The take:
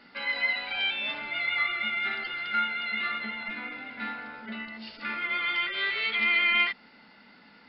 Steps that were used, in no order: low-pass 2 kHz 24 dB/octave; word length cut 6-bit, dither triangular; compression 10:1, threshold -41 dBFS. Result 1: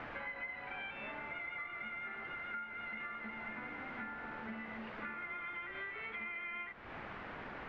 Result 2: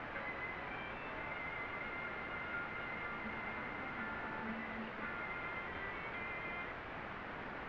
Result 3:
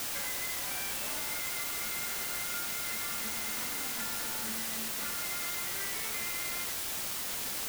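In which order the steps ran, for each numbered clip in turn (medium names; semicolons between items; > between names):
word length cut > low-pass > compression; compression > word length cut > low-pass; low-pass > compression > word length cut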